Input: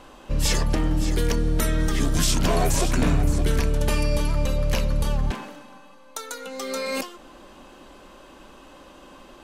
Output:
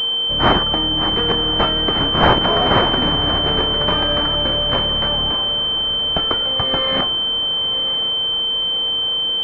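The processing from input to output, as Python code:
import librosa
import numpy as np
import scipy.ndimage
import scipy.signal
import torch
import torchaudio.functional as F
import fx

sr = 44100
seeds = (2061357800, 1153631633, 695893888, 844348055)

p1 = fx.tilt_eq(x, sr, slope=3.5)
p2 = p1 + 10.0 ** (-46.0 / 20.0) * np.sin(2.0 * np.pi * 470.0 * np.arange(len(p1)) / sr)
p3 = fx.echo_diffused(p2, sr, ms=1015, feedback_pct=58, wet_db=-13.0)
p4 = fx.quant_dither(p3, sr, seeds[0], bits=6, dither='triangular')
p5 = p3 + (p4 * librosa.db_to_amplitude(-6.5))
p6 = fx.pwm(p5, sr, carrier_hz=3100.0)
y = p6 * librosa.db_to_amplitude(4.0)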